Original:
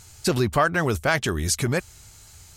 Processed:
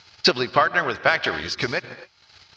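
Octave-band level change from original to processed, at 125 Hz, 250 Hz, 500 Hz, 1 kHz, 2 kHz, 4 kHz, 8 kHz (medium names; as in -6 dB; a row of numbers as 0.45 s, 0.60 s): -10.0 dB, -3.5 dB, +0.5 dB, +3.5 dB, +4.5 dB, +7.5 dB, -11.5 dB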